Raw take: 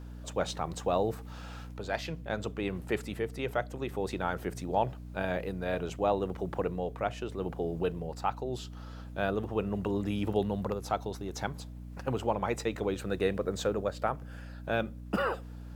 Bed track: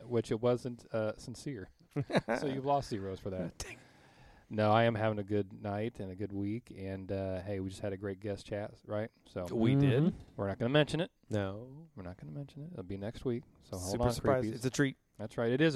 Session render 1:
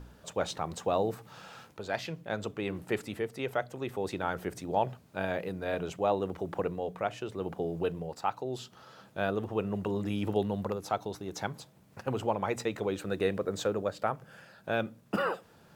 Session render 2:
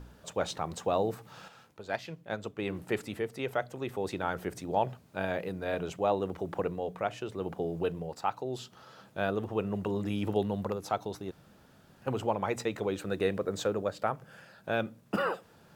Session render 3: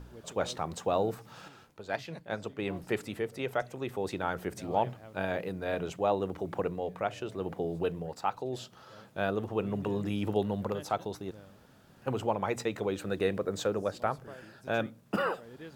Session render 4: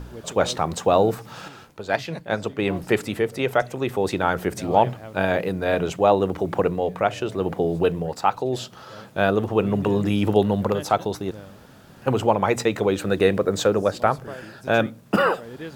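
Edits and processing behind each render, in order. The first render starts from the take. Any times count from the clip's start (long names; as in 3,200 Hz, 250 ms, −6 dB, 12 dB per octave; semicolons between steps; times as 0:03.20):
hum removal 60 Hz, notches 5
0:01.48–0:02.59: expander for the loud parts, over −42 dBFS; 0:11.31–0:12.02: fill with room tone
mix in bed track −18.5 dB
level +11 dB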